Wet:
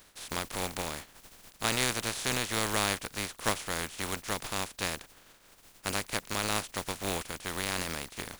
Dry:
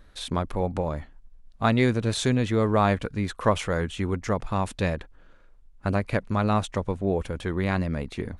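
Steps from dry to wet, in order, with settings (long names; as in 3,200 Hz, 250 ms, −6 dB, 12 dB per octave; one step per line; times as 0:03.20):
compressing power law on the bin magnitudes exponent 0.27
level −8 dB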